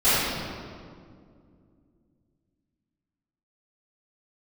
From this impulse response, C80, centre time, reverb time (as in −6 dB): −2.0 dB, 145 ms, 2.2 s